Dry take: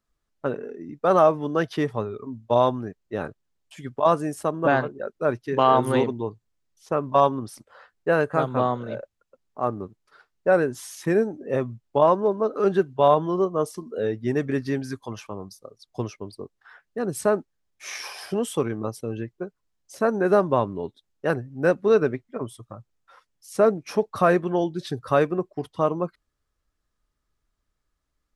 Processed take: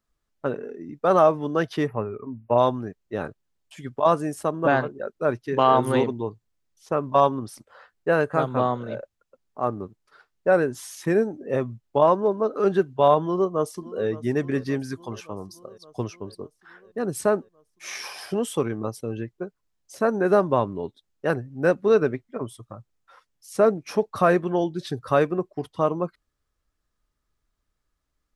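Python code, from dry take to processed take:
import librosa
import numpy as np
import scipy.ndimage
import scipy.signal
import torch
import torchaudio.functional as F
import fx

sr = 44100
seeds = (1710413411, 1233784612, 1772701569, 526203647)

y = fx.spec_box(x, sr, start_s=1.87, length_s=0.71, low_hz=2900.0, high_hz=10000.0, gain_db=-25)
y = fx.echo_throw(y, sr, start_s=13.25, length_s=0.81, ms=570, feedback_pct=70, wet_db=-18.0)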